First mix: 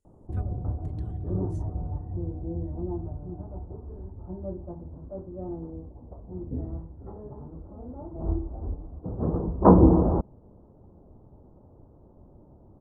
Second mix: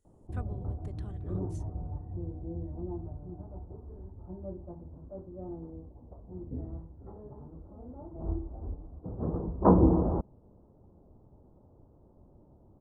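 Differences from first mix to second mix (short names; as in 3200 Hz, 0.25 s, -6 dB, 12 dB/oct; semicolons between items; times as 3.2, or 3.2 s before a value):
speech +4.5 dB; background -5.5 dB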